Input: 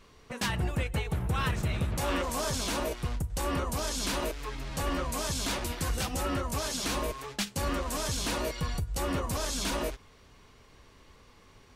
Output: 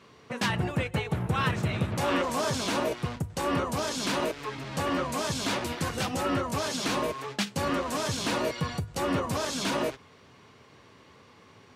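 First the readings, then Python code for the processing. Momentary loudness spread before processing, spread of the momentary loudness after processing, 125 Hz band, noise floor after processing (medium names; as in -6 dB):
4 LU, 5 LU, +1.0 dB, -56 dBFS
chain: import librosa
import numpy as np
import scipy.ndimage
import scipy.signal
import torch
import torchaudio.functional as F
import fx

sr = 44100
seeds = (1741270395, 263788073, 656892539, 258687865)

y = scipy.signal.sosfilt(scipy.signal.butter(4, 100.0, 'highpass', fs=sr, output='sos'), x)
y = fx.high_shelf(y, sr, hz=6900.0, db=-11.5)
y = y * librosa.db_to_amplitude(4.5)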